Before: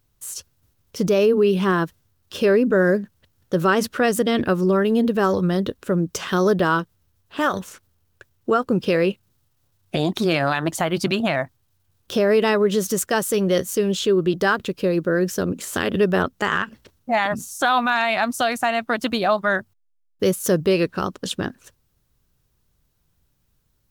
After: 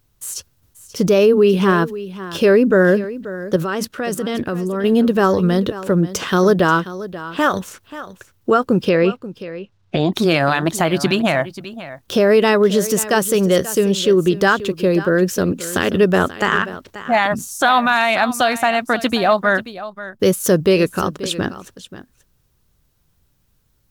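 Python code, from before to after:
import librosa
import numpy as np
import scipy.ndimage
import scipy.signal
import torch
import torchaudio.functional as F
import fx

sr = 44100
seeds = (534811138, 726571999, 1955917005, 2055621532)

y = fx.level_steps(x, sr, step_db=13, at=(3.56, 4.84))
y = fx.air_absorb(y, sr, metres=140.0, at=(8.89, 10.13))
y = y + 10.0 ** (-15.0 / 20.0) * np.pad(y, (int(534 * sr / 1000.0), 0))[:len(y)]
y = F.gain(torch.from_numpy(y), 4.5).numpy()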